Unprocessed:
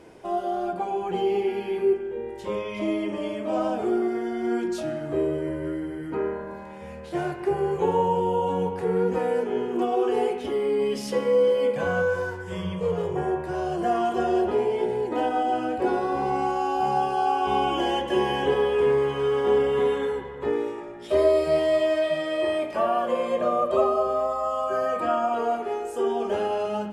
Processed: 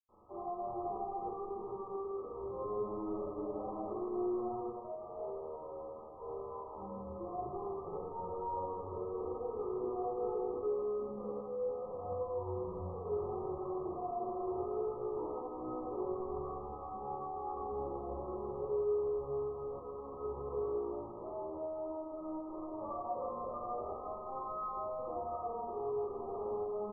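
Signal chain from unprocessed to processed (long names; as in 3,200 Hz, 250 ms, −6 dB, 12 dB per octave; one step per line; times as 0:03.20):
rippled gain that drifts along the octave scale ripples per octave 1.8, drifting −2.8 Hz, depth 15 dB
downward compressor, threshold −25 dBFS, peak gain reduction 14 dB
0:04.54–0:06.69: Butterworth high-pass 420 Hz 72 dB per octave
log-companded quantiser 2 bits
linear-phase brick-wall low-pass 1,300 Hz
double-tracking delay 14 ms −10.5 dB
convolution reverb, pre-delay 46 ms
flanger 0.2 Hz, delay 8.3 ms, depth 1.5 ms, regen −50%
repeating echo 159 ms, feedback 46%, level −7.5 dB
level +2 dB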